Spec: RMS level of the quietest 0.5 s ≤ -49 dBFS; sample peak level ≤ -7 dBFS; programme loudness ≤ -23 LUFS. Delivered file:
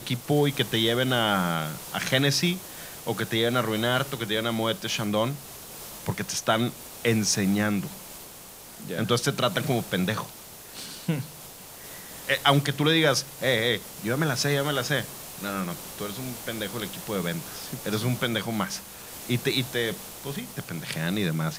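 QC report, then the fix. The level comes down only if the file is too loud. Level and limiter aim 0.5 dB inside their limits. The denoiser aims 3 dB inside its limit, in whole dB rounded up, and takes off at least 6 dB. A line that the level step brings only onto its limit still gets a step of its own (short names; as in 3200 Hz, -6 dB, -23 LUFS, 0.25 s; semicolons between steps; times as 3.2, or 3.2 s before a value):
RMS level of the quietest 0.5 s -45 dBFS: fail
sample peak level -5.5 dBFS: fail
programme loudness -26.5 LUFS: OK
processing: denoiser 7 dB, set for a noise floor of -45 dBFS; limiter -7.5 dBFS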